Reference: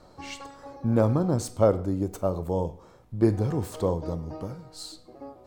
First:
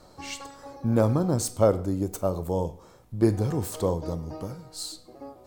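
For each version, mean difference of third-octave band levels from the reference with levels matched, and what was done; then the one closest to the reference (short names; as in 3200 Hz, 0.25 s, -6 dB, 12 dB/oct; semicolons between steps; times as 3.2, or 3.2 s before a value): 2.0 dB: high shelf 5200 Hz +9.5 dB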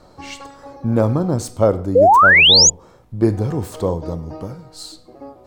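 5.0 dB: painted sound rise, 1.95–2.7, 460–7100 Hz -15 dBFS; gain +5.5 dB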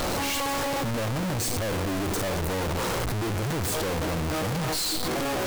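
18.0 dB: infinite clipping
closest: first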